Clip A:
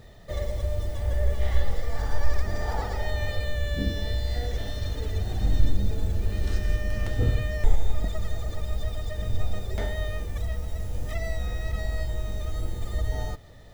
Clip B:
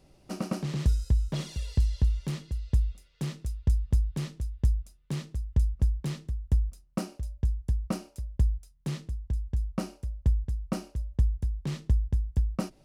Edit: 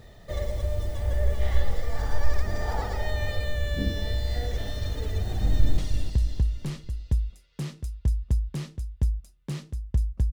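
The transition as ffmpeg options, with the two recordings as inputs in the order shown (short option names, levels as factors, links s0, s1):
-filter_complex "[0:a]apad=whole_dur=10.32,atrim=end=10.32,atrim=end=5.782[s0];[1:a]atrim=start=1.398:end=5.94[s1];[s0][s1]acrossfade=d=0.004:c1=hsin:c2=hsin,asplit=2[s2][s3];[s3]afade=t=in:st=5.37:d=0.01,afade=t=out:st=5.78:d=0.01,aecho=0:1:310|620|930|1240|1550:0.446684|0.201008|0.0904534|0.040704|0.0183168[s4];[s2][s4]amix=inputs=2:normalize=0"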